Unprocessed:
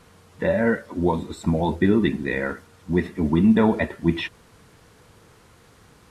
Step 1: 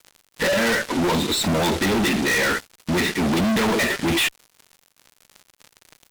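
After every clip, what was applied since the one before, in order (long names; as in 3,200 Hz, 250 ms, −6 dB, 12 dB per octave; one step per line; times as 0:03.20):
meter weighting curve D
fuzz pedal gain 38 dB, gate −42 dBFS
level −5.5 dB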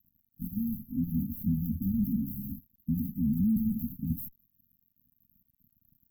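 linear-phase brick-wall band-stop 270–12,000 Hz
level −4.5 dB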